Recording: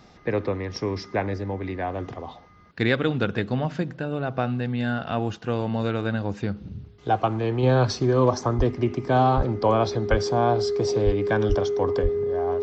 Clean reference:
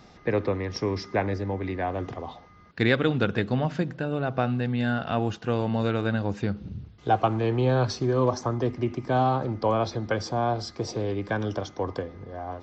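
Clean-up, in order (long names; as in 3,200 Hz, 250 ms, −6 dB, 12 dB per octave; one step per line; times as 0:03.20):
notch filter 410 Hz, Q 30
high-pass at the plosives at 0:08.57/0:09.36/0:10.10/0:11.05/0:11.48/0:12.02
level 0 dB, from 0:07.63 −3.5 dB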